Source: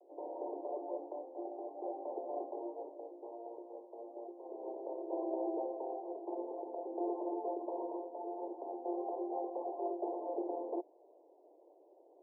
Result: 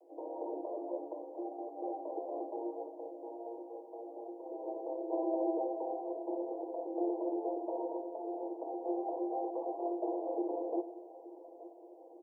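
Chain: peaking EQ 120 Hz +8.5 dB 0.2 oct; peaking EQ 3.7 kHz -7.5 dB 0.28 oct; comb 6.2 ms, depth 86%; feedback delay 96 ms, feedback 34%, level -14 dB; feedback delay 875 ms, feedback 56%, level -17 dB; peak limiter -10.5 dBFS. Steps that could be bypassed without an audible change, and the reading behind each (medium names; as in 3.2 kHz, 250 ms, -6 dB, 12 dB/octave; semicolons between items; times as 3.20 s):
peaking EQ 120 Hz: input has nothing below 250 Hz; peaking EQ 3.7 kHz: input has nothing above 1.1 kHz; peak limiter -10.5 dBFS: peak at its input -22.5 dBFS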